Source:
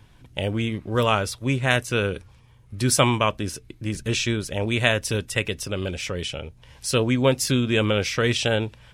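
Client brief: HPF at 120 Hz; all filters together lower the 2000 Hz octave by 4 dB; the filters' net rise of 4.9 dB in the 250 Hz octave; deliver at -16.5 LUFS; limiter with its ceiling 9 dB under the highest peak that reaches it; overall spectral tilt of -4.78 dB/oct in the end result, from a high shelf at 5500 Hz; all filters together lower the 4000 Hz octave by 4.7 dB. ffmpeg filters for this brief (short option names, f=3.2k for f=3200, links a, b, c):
-af "highpass=120,equalizer=f=250:t=o:g=6,equalizer=f=2k:t=o:g=-4,equalizer=f=4k:t=o:g=-7.5,highshelf=f=5.5k:g=6,volume=8.5dB,alimiter=limit=-4dB:level=0:latency=1"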